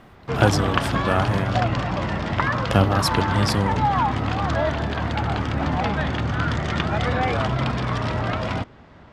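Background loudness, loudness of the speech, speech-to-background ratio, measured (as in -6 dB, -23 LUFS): -23.5 LUFS, -23.5 LUFS, 0.0 dB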